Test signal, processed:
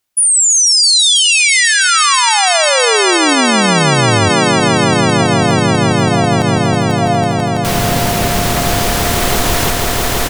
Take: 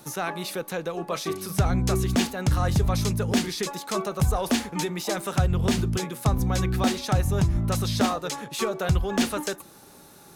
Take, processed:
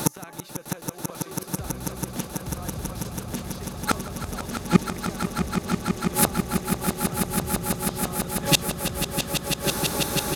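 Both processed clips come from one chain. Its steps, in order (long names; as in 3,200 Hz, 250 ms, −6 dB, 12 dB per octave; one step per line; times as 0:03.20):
slap from a distant wall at 29 metres, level −18 dB
gate with flip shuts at −23 dBFS, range −34 dB
on a send: echo that builds up and dies away 164 ms, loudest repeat 8, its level −8.5 dB
on the sum: boost into a limiter +21 dB
level −1 dB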